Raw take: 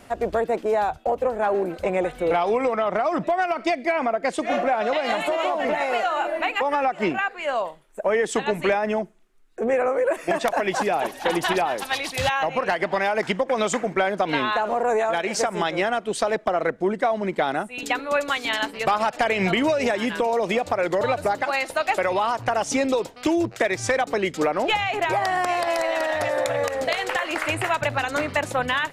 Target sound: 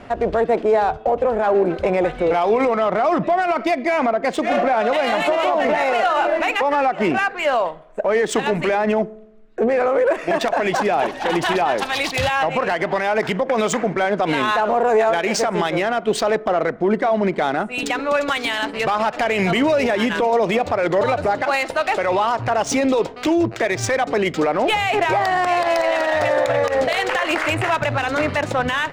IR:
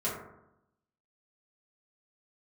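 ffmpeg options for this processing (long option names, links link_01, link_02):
-filter_complex "[0:a]alimiter=limit=-19dB:level=0:latency=1:release=48,adynamicsmooth=sensitivity=6:basefreq=3200,asplit=2[link_01][link_02];[1:a]atrim=start_sample=2205[link_03];[link_02][link_03]afir=irnorm=-1:irlink=0,volume=-26.5dB[link_04];[link_01][link_04]amix=inputs=2:normalize=0,volume=8.5dB"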